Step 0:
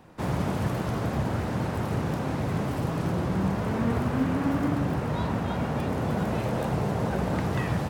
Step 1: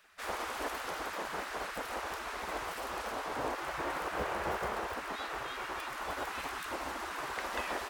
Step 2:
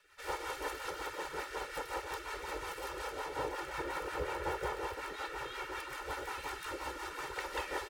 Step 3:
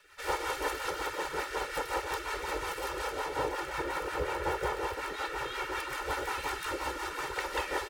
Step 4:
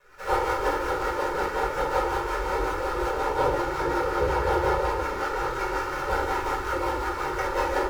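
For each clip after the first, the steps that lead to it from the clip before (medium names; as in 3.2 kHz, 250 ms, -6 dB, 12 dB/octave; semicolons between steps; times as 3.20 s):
spectral gate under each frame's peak -15 dB weak
comb 2.2 ms, depth 100%; in parallel at -12 dB: hard clipper -32.5 dBFS, distortion -11 dB; on the sum: rotary cabinet horn 5.5 Hz; trim -4 dB
gain riding 2 s; trim +5.5 dB
median filter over 15 samples; simulated room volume 450 m³, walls furnished, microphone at 5.2 m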